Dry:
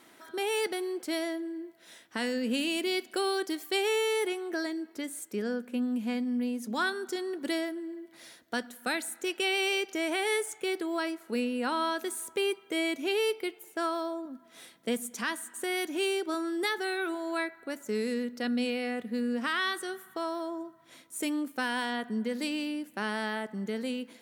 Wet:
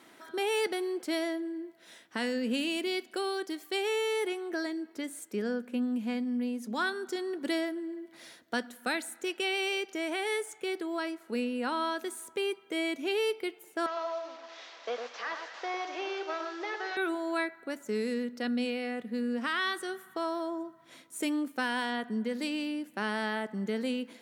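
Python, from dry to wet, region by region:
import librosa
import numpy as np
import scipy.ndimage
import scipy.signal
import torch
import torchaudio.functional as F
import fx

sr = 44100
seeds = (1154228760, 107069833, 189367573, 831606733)

y = fx.chain(x, sr, fx.delta_mod(bps=32000, step_db=-46.0),
    fx.highpass(hz=500.0, slope=24),
    fx.echo_alternate(ms=107, hz=1700.0, feedback_pct=57, wet_db=-5.5), at=(13.86, 16.97))
y = scipy.signal.sosfilt(scipy.signal.butter(2, 95.0, 'highpass', fs=sr, output='sos'), y)
y = fx.high_shelf(y, sr, hz=7900.0, db=-6.0)
y = fx.rider(y, sr, range_db=4, speed_s=2.0)
y = y * librosa.db_to_amplitude(-1.0)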